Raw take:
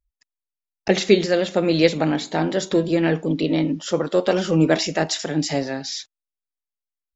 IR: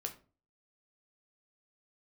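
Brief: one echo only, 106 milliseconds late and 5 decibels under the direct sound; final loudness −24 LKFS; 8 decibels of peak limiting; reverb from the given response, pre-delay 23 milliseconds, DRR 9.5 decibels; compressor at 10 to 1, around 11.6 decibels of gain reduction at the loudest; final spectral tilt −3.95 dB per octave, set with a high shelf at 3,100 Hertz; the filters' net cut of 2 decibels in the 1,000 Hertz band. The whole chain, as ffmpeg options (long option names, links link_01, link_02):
-filter_complex "[0:a]equalizer=frequency=1000:width_type=o:gain=-3.5,highshelf=frequency=3100:gain=5,acompressor=threshold=-21dB:ratio=10,alimiter=limit=-16.5dB:level=0:latency=1,aecho=1:1:106:0.562,asplit=2[link_01][link_02];[1:a]atrim=start_sample=2205,adelay=23[link_03];[link_02][link_03]afir=irnorm=-1:irlink=0,volume=-8.5dB[link_04];[link_01][link_04]amix=inputs=2:normalize=0,volume=2dB"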